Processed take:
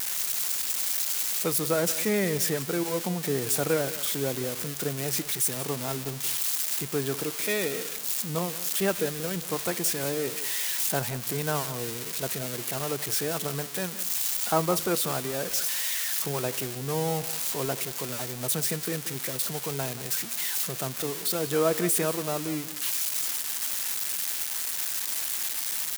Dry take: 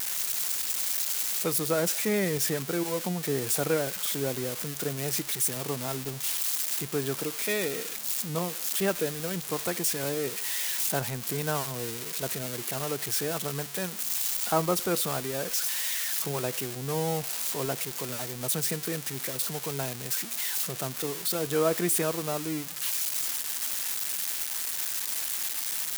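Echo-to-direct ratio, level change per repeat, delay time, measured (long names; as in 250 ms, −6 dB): −15.5 dB, −15.0 dB, 179 ms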